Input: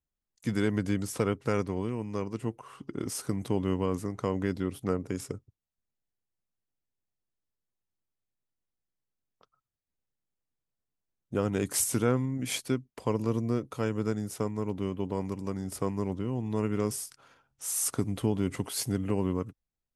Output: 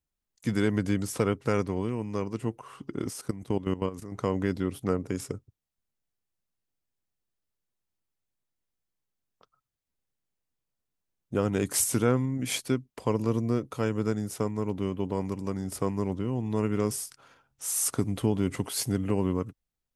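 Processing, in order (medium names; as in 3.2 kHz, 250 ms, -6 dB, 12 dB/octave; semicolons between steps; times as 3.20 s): 3.09–4.12 s: level held to a coarse grid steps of 14 dB; trim +2 dB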